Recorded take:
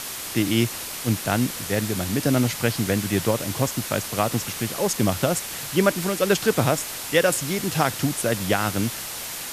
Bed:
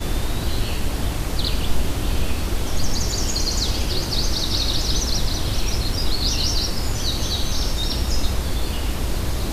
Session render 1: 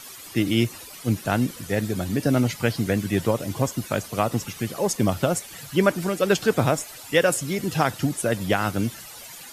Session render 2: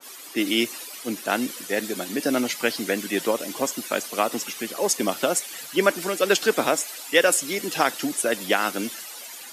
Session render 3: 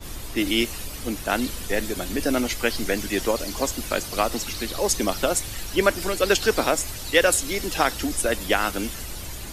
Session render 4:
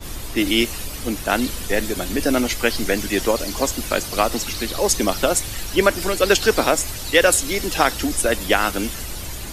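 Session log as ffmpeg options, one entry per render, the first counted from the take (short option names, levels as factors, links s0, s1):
-af "afftdn=nr=13:nf=-33"
-af "highpass=f=250:w=0.5412,highpass=f=250:w=1.3066,adynamicequalizer=threshold=0.0141:dfrequency=1500:dqfactor=0.7:tfrequency=1500:tqfactor=0.7:attack=5:release=100:ratio=0.375:range=2.5:mode=boostabove:tftype=highshelf"
-filter_complex "[1:a]volume=0.211[s0];[0:a][s0]amix=inputs=2:normalize=0"
-af "volume=1.58,alimiter=limit=0.891:level=0:latency=1"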